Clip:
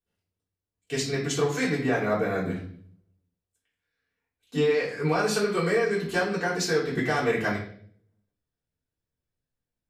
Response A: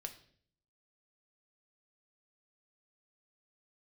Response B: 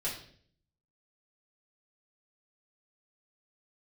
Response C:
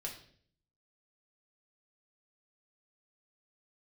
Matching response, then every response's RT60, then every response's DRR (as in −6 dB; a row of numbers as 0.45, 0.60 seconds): B; 0.55, 0.55, 0.55 seconds; 5.0, −9.0, −2.0 decibels